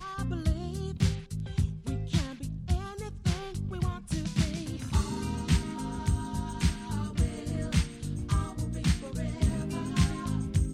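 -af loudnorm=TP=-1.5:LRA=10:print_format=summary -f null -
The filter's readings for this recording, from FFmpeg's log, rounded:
Input Integrated:    -31.6 LUFS
Input True Peak:     -11.3 dBTP
Input LRA:             1.9 LU
Input Threshold:     -41.6 LUFS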